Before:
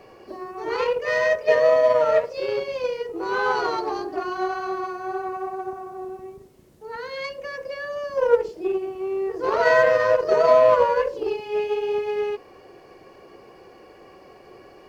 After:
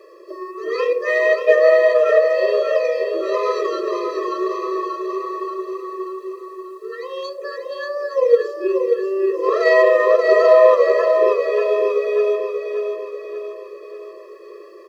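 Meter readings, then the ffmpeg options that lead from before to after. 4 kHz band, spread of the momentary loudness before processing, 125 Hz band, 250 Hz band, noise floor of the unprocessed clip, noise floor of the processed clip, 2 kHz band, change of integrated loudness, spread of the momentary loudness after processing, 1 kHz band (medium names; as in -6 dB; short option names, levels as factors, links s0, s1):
+1.5 dB, 17 LU, under -25 dB, +5.0 dB, -49 dBFS, -40 dBFS, +3.0 dB, +5.0 dB, 18 LU, +0.5 dB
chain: -af "aecho=1:1:585|1170|1755|2340|2925|3510:0.531|0.271|0.138|0.0704|0.0359|0.0183,afftfilt=real='re*eq(mod(floor(b*sr/1024/340),2),1)':imag='im*eq(mod(floor(b*sr/1024/340),2),1)':win_size=1024:overlap=0.75,volume=1.68"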